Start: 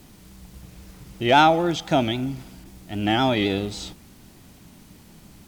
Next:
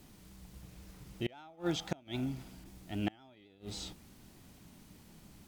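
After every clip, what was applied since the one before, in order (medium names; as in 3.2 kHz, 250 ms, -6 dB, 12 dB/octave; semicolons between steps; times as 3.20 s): inverted gate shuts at -12 dBFS, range -30 dB; trim -8.5 dB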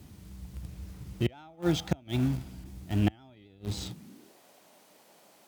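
bass shelf 240 Hz +6.5 dB; in parallel at -10.5 dB: bit crusher 6-bit; on the sum: high-pass sweep 72 Hz -> 590 Hz, 3.77–4.38 s; trim +1.5 dB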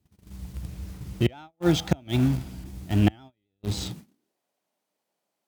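gate -46 dBFS, range -28 dB; trim +5.5 dB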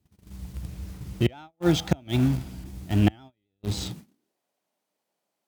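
no audible change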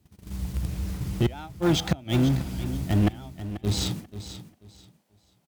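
in parallel at +3 dB: compression, threshold -30 dBFS, peak gain reduction 14.5 dB; on the sum: saturation -15 dBFS, distortion -12 dB; feedback delay 487 ms, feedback 24%, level -12.5 dB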